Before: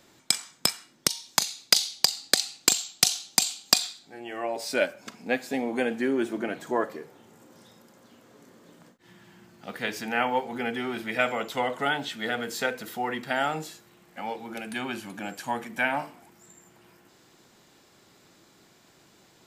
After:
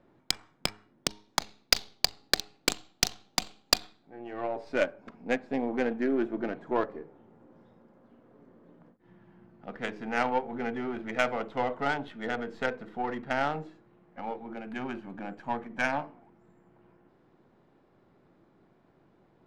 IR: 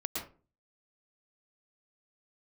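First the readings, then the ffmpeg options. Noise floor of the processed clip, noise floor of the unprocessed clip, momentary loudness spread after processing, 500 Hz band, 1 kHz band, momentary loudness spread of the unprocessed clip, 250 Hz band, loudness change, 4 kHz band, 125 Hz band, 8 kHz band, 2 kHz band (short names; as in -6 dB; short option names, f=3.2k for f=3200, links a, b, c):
-66 dBFS, -59 dBFS, 12 LU, -1.5 dB, -2.0 dB, 14 LU, -1.5 dB, -4.5 dB, -5.5 dB, -1.0 dB, -9.5 dB, -4.0 dB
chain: -af "aeval=exprs='if(lt(val(0),0),0.708*val(0),val(0))':c=same,bandreject=f=104.6:t=h:w=4,bandreject=f=209.2:t=h:w=4,bandreject=f=313.8:t=h:w=4,bandreject=f=418.4:t=h:w=4,adynamicsmooth=sensitivity=1:basefreq=1.2k"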